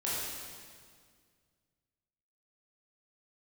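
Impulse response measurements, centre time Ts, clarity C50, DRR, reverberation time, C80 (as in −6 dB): 127 ms, −2.5 dB, −8.5 dB, 1.9 s, −0.5 dB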